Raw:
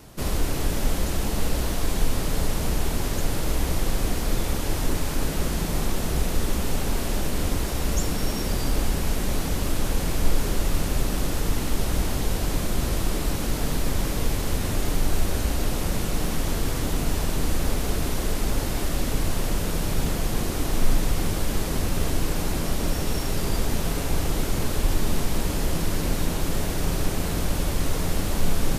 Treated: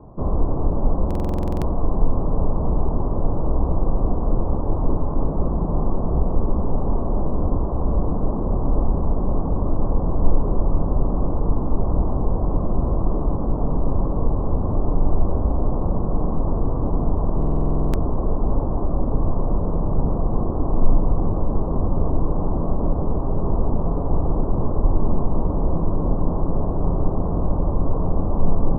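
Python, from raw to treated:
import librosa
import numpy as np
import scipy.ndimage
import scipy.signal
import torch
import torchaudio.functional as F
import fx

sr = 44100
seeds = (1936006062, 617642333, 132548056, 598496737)

y = scipy.signal.sosfilt(scipy.signal.cheby1(5, 1.0, 1100.0, 'lowpass', fs=sr, output='sos'), x)
y = fx.buffer_glitch(y, sr, at_s=(1.06, 17.38), block=2048, repeats=11)
y = y * 10.0 ** (5.0 / 20.0)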